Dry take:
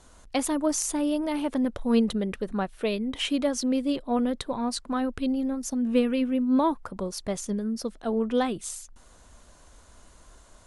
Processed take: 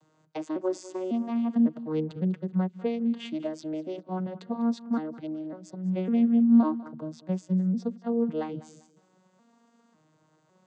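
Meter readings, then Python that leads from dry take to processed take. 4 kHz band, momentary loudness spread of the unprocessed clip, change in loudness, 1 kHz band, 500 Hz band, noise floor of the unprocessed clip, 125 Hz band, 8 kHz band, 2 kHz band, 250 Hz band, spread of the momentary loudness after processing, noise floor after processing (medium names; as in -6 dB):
under -10 dB, 8 LU, -1.0 dB, -7.0 dB, -4.5 dB, -54 dBFS, no reading, under -15 dB, under -10 dB, 0.0 dB, 14 LU, -67 dBFS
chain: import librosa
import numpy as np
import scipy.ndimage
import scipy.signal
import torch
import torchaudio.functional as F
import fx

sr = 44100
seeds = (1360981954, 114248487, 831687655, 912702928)

p1 = fx.vocoder_arp(x, sr, chord='minor triad', root=51, every_ms=552)
y = p1 + fx.echo_feedback(p1, sr, ms=198, feedback_pct=30, wet_db=-18.0, dry=0)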